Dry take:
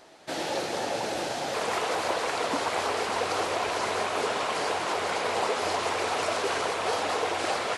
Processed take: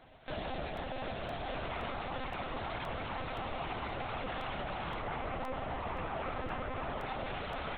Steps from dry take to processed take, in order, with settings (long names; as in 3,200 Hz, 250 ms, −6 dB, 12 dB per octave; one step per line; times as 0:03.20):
0:05.00–0:07.06: Bessel low-pass filter 2,100 Hz, order 2
brickwall limiter −25 dBFS, peak gain reduction 10.5 dB
flanger 0.92 Hz, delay 6.2 ms, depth 5.6 ms, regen −7%
one-pitch LPC vocoder at 8 kHz 260 Hz
regular buffer underruns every 0.52 s, samples 64, repeat, from 0:00.77
level −1.5 dB